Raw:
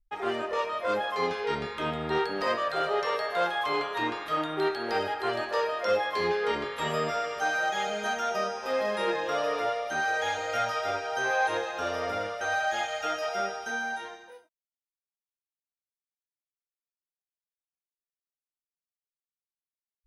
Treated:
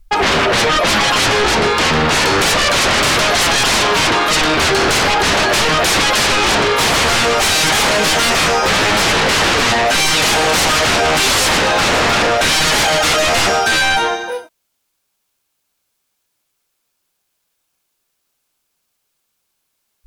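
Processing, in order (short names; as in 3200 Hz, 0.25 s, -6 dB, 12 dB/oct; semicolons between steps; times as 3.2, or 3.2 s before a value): notch 1900 Hz; sine folder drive 18 dB, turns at -15 dBFS; gain +4.5 dB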